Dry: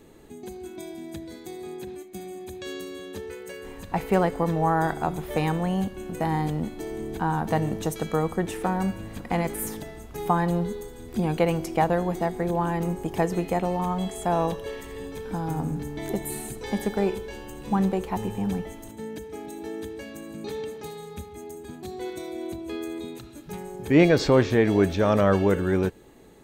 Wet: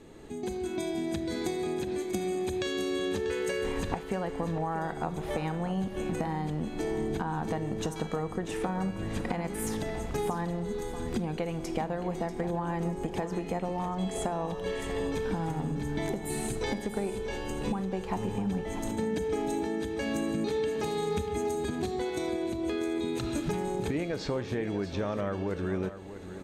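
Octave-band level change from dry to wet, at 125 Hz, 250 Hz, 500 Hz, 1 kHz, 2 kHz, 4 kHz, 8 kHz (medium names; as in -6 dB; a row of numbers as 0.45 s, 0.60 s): -6.0 dB, -5.0 dB, -5.0 dB, -7.0 dB, -5.0 dB, -1.5 dB, -1.5 dB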